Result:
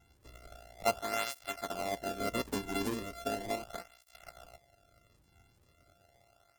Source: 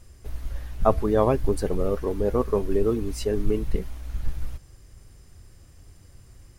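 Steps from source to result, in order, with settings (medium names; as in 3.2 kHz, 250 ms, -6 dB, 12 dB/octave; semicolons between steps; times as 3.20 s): sorted samples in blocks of 64 samples; cancelling through-zero flanger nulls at 0.37 Hz, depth 1.7 ms; trim -8 dB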